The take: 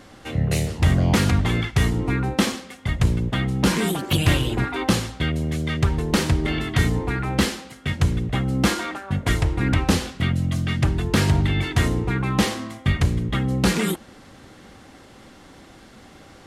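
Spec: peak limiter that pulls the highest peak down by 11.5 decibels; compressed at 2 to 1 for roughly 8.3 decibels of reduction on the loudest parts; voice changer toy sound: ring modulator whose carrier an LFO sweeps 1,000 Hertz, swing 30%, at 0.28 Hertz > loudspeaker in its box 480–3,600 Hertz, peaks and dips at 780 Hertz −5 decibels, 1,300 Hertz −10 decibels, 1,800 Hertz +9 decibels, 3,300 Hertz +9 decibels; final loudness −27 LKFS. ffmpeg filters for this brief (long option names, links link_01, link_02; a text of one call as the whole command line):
ffmpeg -i in.wav -af "acompressor=threshold=-29dB:ratio=2,alimiter=level_in=1dB:limit=-24dB:level=0:latency=1,volume=-1dB,aeval=exprs='val(0)*sin(2*PI*1000*n/s+1000*0.3/0.28*sin(2*PI*0.28*n/s))':channel_layout=same,highpass=480,equalizer=frequency=780:width_type=q:width=4:gain=-5,equalizer=frequency=1300:width_type=q:width=4:gain=-10,equalizer=frequency=1800:width_type=q:width=4:gain=9,equalizer=frequency=3300:width_type=q:width=4:gain=9,lowpass=frequency=3600:width=0.5412,lowpass=frequency=3600:width=1.3066,volume=10.5dB" out.wav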